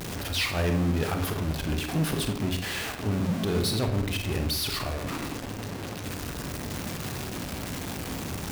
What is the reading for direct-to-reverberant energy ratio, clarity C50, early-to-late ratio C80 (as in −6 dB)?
5.0 dB, 7.0 dB, 11.0 dB